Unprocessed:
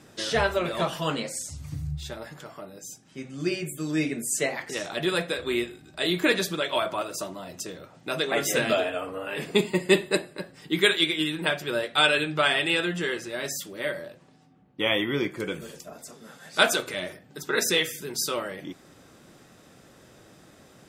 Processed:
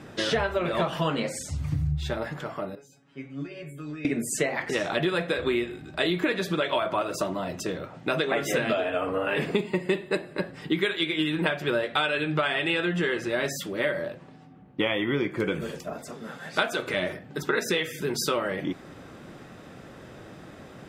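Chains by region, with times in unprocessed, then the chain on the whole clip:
2.75–4.05 s: tone controls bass -6 dB, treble -9 dB + compression 12:1, threshold -31 dBFS + feedback comb 140 Hz, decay 0.16 s, mix 100%
whole clip: tone controls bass +1 dB, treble -12 dB; compression 10:1, threshold -30 dBFS; trim +8 dB

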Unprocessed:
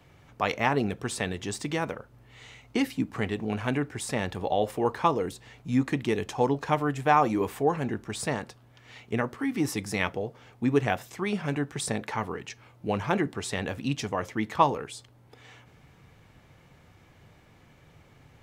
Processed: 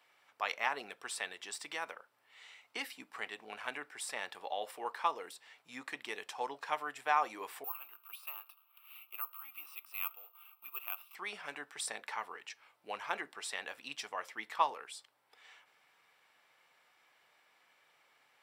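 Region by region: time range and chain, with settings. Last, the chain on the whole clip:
7.64–11.15 s: companding laws mixed up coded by mu + two resonant band-passes 1.8 kHz, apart 1.1 oct + careless resampling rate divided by 3×, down filtered, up zero stuff
whole clip: high-pass 910 Hz 12 dB/octave; band-stop 6.5 kHz, Q 7.5; trim -5.5 dB

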